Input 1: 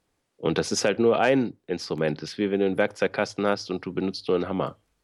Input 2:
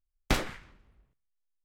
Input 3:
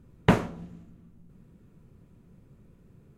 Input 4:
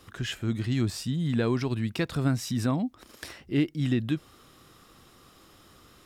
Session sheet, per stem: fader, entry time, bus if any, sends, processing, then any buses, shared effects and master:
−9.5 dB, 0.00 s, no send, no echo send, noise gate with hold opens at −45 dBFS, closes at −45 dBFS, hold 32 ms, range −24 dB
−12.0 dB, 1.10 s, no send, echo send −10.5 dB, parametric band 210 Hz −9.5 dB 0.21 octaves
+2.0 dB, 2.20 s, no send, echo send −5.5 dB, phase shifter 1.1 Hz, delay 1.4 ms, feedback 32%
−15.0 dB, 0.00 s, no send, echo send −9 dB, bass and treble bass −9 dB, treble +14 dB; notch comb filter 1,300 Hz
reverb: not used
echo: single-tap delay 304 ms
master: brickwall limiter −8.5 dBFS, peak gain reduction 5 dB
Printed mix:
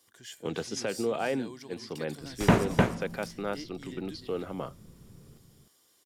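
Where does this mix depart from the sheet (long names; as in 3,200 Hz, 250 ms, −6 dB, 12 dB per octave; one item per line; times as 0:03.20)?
stem 2: entry 1.10 s → 2.10 s
stem 3: missing phase shifter 1.1 Hz, delay 1.4 ms, feedback 32%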